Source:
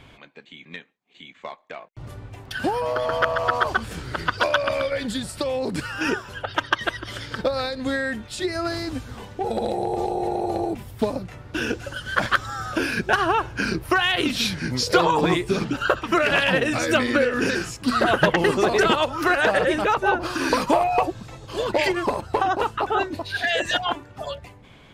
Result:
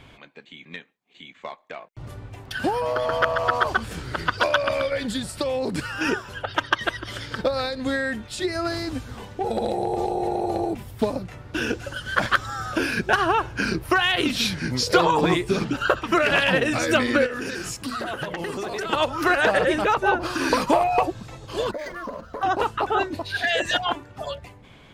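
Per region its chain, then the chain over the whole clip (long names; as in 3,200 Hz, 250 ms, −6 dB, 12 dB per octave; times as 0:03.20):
0:17.26–0:18.93: mains-hum notches 60/120/180/240/300/360/420/480/540/600 Hz + downward compressor 5 to 1, threshold −27 dBFS + high-shelf EQ 7,000 Hz +6.5 dB
0:21.71–0:22.43: phaser with its sweep stopped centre 550 Hz, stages 8 + downward compressor 3 to 1, threshold −30 dBFS + linearly interpolated sample-rate reduction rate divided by 4×
whole clip: no processing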